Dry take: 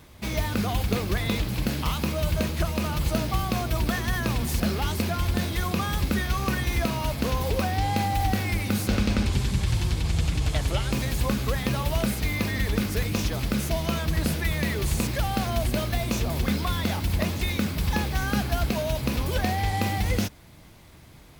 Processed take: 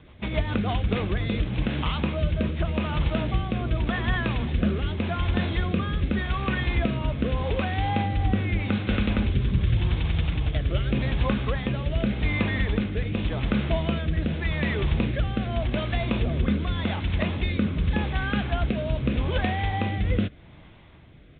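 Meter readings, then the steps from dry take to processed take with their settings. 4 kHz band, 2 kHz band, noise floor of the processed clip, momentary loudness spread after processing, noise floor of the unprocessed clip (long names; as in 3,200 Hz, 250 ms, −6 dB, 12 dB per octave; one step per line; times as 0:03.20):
−3.0 dB, 0.0 dB, −48 dBFS, 2 LU, −49 dBFS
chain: rotating-speaker cabinet horn 7.5 Hz, later 0.85 Hz, at 0:00.28
downsampling to 8,000 Hz
level +2.5 dB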